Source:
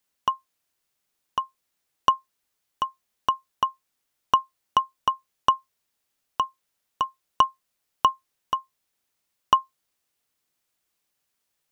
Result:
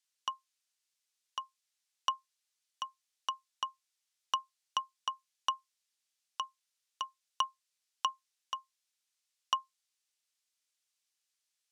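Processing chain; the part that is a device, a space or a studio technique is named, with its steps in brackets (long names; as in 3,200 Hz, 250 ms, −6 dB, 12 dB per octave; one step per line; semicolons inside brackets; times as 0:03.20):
piezo pickup straight into a mixer (low-pass filter 6,000 Hz 12 dB per octave; first difference)
level +3 dB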